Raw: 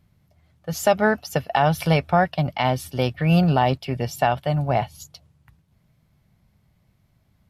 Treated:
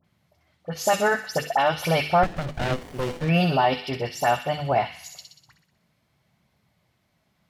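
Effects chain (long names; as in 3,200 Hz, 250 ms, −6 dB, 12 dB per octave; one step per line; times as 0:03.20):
high-pass filter 330 Hz 6 dB per octave
high-shelf EQ 9,500 Hz −9.5 dB
mains-hum notches 50/100/150/200/250/300/350/400/450/500 Hz
in parallel at +0.5 dB: brickwall limiter −13.5 dBFS, peak gain reduction 7.5 dB
on the sum: all-pass dispersion highs, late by 46 ms, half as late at 1,700 Hz
flanger 0.46 Hz, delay 0 ms, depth 7 ms, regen −61%
on a send: delay with a high-pass on its return 62 ms, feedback 60%, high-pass 2,300 Hz, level −4 dB
0:02.23–0:03.29: on the sum: windowed peak hold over 33 samples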